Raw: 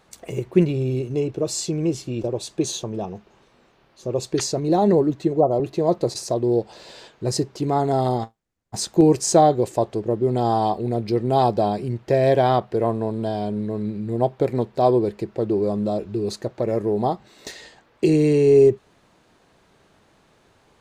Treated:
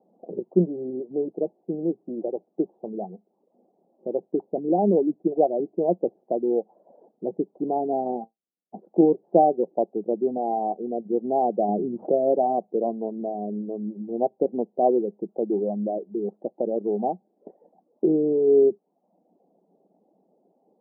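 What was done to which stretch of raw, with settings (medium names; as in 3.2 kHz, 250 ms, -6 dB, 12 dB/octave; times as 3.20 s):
10.37–11.05 s: bass shelf 170 Hz -5 dB
11.68–12.12 s: level flattener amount 70%
whole clip: reverb removal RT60 0.63 s; Chebyshev band-pass 180–780 Hz, order 4; trim -1.5 dB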